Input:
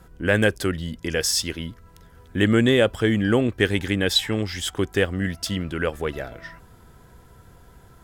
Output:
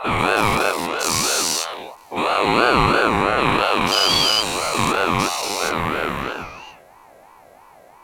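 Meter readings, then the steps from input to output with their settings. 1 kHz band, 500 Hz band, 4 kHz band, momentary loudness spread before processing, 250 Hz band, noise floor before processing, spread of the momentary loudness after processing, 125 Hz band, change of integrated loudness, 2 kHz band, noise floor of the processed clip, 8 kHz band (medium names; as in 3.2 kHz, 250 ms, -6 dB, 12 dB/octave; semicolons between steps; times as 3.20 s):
+18.5 dB, +1.5 dB, +7.0 dB, 14 LU, -2.0 dB, -51 dBFS, 11 LU, -3.0 dB, +4.0 dB, +5.0 dB, -48 dBFS, +7.5 dB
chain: every event in the spectrogram widened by 480 ms; ring modulator with a swept carrier 790 Hz, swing 25%, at 3 Hz; trim -2 dB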